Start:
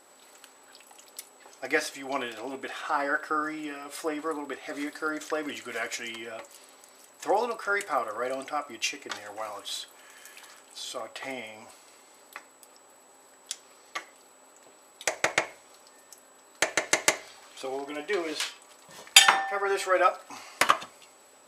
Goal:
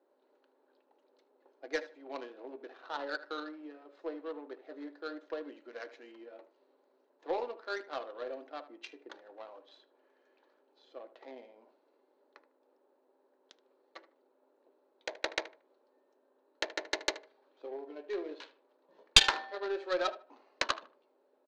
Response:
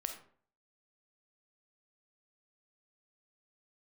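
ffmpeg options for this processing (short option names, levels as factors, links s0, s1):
-filter_complex "[0:a]adynamicsmooth=sensitivity=1:basefreq=750,highpass=f=310:w=0.5412,highpass=f=310:w=1.3066,equalizer=f=740:t=q:w=4:g=-7,equalizer=f=1200:t=q:w=4:g=-8,equalizer=f=2100:t=q:w=4:g=-5,equalizer=f=4100:t=q:w=4:g=9,equalizer=f=6400:t=q:w=4:g=3,lowpass=f=6700:w=0.5412,lowpass=f=6700:w=1.3066,asplit=2[s0][s1];[s1]adelay=76,lowpass=f=2300:p=1,volume=0.2,asplit=2[s2][s3];[s3]adelay=76,lowpass=f=2300:p=1,volume=0.26,asplit=2[s4][s5];[s5]adelay=76,lowpass=f=2300:p=1,volume=0.26[s6];[s2][s4][s6]amix=inputs=3:normalize=0[s7];[s0][s7]amix=inputs=2:normalize=0,aeval=exprs='1.19*(cos(1*acos(clip(val(0)/1.19,-1,1)))-cos(1*PI/2))+0.376*(cos(2*acos(clip(val(0)/1.19,-1,1)))-cos(2*PI/2))':c=same,volume=0.531"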